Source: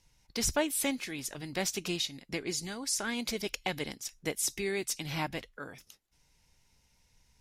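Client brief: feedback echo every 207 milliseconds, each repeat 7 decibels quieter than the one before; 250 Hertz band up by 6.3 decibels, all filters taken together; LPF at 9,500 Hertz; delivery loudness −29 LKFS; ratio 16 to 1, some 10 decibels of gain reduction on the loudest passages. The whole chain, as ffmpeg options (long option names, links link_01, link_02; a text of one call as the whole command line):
ffmpeg -i in.wav -af "lowpass=9500,equalizer=frequency=250:width_type=o:gain=8,acompressor=threshold=-32dB:ratio=16,aecho=1:1:207|414|621|828|1035:0.447|0.201|0.0905|0.0407|0.0183,volume=7.5dB" out.wav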